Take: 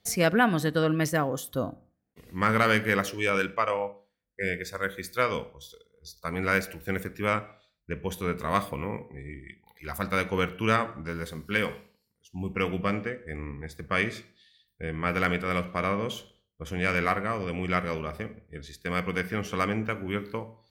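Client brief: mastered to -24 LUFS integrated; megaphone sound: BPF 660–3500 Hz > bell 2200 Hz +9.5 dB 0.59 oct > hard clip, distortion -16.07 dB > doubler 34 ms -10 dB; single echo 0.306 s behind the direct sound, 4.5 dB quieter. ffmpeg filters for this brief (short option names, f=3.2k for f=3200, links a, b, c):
-filter_complex "[0:a]highpass=660,lowpass=3.5k,equalizer=f=2.2k:t=o:w=0.59:g=9.5,aecho=1:1:306:0.596,asoftclip=type=hard:threshold=-14dB,asplit=2[a][b];[b]adelay=34,volume=-10dB[c];[a][c]amix=inputs=2:normalize=0,volume=1.5dB"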